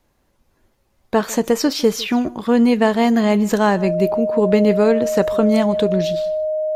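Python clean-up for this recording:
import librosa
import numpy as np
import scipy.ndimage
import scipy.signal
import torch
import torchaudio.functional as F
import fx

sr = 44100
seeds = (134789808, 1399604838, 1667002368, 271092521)

y = fx.notch(x, sr, hz=620.0, q=30.0)
y = fx.fix_echo_inverse(y, sr, delay_ms=153, level_db=-21.5)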